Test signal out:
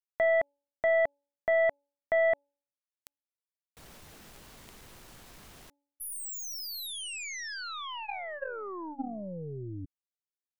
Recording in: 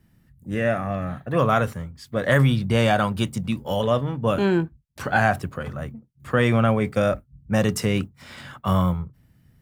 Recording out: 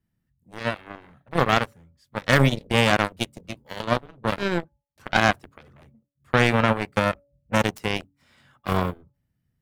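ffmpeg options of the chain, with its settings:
-af "bandreject=f=284.2:t=h:w=4,bandreject=f=568.4:t=h:w=4,bandreject=f=852.6:t=h:w=4,aeval=exprs='0.668*(cos(1*acos(clip(val(0)/0.668,-1,1)))-cos(1*PI/2))+0.00422*(cos(6*acos(clip(val(0)/0.668,-1,1)))-cos(6*PI/2))+0.106*(cos(7*acos(clip(val(0)/0.668,-1,1)))-cos(7*PI/2))':c=same,volume=1.26"

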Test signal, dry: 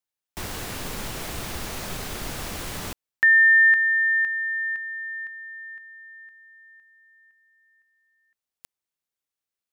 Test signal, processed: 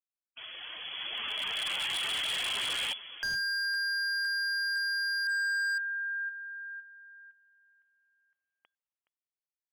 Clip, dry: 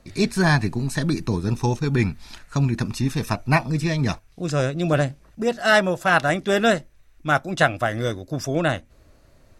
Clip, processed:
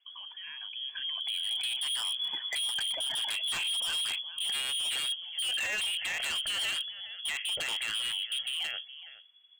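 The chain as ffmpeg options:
-filter_complex "[0:a]afftdn=nr=15:nf=-37,lowshelf=f=120:g=-5,acompressor=threshold=0.0316:ratio=6:attack=0.37:release=27:knee=6:detection=rms,alimiter=level_in=3.16:limit=0.0631:level=0:latency=1:release=59,volume=0.316,dynaudnorm=f=240:g=11:m=5.31,asplit=2[s0][s1];[s1]adelay=419.8,volume=0.178,highshelf=f=4000:g=-9.45[s2];[s0][s2]amix=inputs=2:normalize=0,lowpass=f=2900:t=q:w=0.5098,lowpass=f=2900:t=q:w=0.6013,lowpass=f=2900:t=q:w=0.9,lowpass=f=2900:t=q:w=2.563,afreqshift=-3400,aeval=exprs='0.0631*(abs(mod(val(0)/0.0631+3,4)-2)-1)':c=same,volume=0.708"

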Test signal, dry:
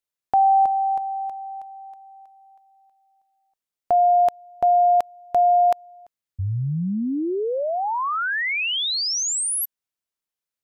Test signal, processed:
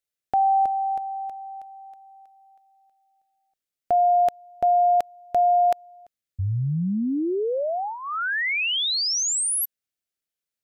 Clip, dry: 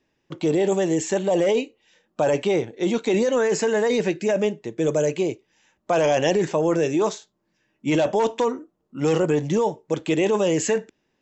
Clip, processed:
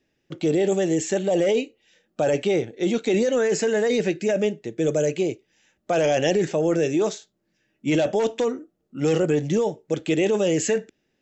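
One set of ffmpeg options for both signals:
-af "equalizer=f=1000:t=o:w=0.39:g=-13"

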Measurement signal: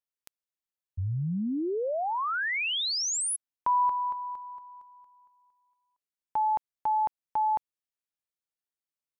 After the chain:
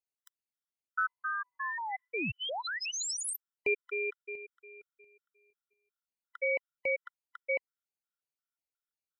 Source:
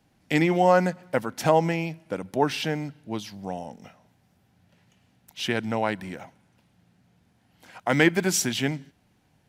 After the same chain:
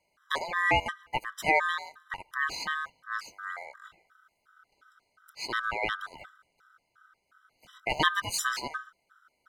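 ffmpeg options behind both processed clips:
-af "asubboost=boost=7:cutoff=100,aeval=exprs='val(0)*sin(2*PI*1400*n/s)':c=same,afftfilt=real='re*gt(sin(2*PI*2.8*pts/sr)*(1-2*mod(floor(b*sr/1024/1000),2)),0)':imag='im*gt(sin(2*PI*2.8*pts/sr)*(1-2*mod(floor(b*sr/1024/1000),2)),0)':win_size=1024:overlap=0.75"

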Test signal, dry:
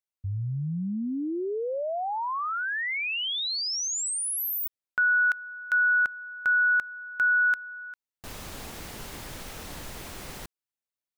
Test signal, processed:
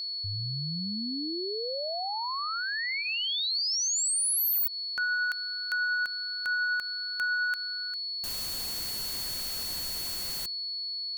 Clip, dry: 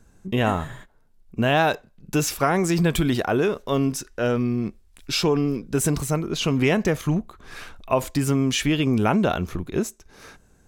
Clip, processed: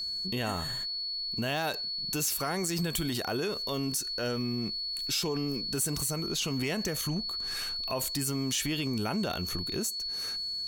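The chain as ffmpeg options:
-af "bandreject=f=2400:w=29,crystalizer=i=3.5:c=0,aeval=exprs='val(0)+0.0398*sin(2*PI*4400*n/s)':c=same,aeval=exprs='1*(cos(1*acos(clip(val(0)/1,-1,1)))-cos(1*PI/2))+0.0794*(cos(5*acos(clip(val(0)/1,-1,1)))-cos(5*PI/2))':c=same,acompressor=threshold=0.112:ratio=4:attack=0.45:release=167:knee=6:detection=peak,volume=0.447"

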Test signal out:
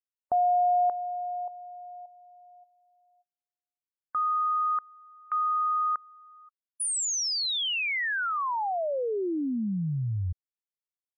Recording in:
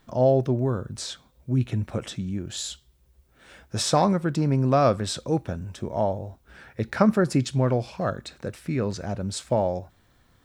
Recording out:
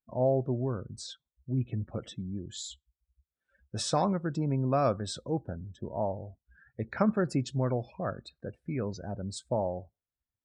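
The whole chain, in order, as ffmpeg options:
-af "afftdn=nr=32:nf=-39,volume=0.447"

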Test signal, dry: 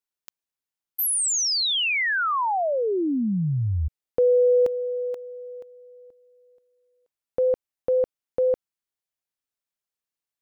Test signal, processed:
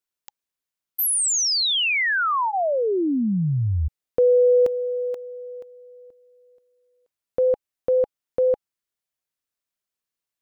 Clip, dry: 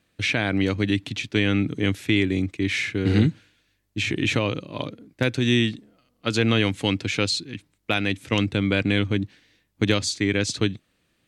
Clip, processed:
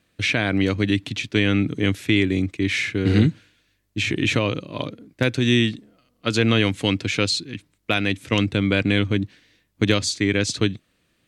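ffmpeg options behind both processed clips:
-af "bandreject=f=830:w=14,volume=1.26"

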